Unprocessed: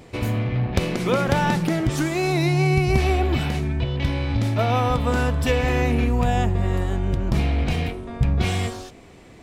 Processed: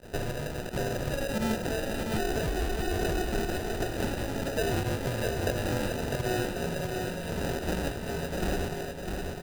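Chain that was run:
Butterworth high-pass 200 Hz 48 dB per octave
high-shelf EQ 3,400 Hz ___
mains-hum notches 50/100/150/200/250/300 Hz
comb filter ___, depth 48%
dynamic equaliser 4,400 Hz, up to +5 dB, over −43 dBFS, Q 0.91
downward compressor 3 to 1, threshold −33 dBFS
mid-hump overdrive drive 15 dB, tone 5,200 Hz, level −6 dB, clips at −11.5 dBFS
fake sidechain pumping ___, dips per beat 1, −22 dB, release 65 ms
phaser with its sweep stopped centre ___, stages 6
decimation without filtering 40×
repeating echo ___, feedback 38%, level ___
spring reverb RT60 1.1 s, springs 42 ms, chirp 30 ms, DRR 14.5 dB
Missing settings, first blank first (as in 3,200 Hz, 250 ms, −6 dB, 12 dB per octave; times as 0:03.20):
−2.5 dB, 1.9 ms, 87 BPM, 1,500 Hz, 652 ms, −4.5 dB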